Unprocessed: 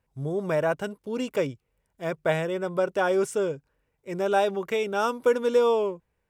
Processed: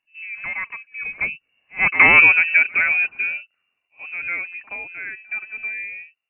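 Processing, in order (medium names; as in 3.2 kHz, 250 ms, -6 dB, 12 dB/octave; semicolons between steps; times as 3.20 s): Doppler pass-by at 2.12 s, 40 m/s, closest 3.5 m; frequency inversion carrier 2.8 kHz; reverse echo 74 ms -21.5 dB; loudness maximiser +23.5 dB; trim -1 dB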